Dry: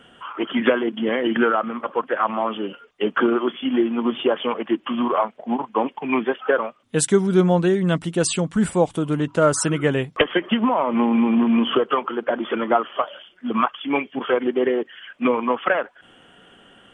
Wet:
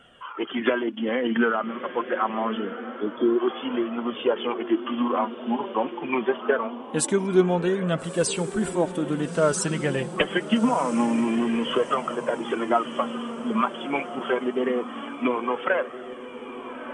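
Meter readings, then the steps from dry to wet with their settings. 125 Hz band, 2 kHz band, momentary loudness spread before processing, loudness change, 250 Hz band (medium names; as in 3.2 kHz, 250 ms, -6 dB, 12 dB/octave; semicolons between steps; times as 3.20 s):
-6.0 dB, -3.5 dB, 8 LU, -4.0 dB, -4.0 dB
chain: spectral selection erased 2.64–3.40 s, 530–3200 Hz; echo that smears into a reverb 1331 ms, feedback 46%, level -11 dB; flange 0.25 Hz, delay 1.4 ms, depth 4.4 ms, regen +43%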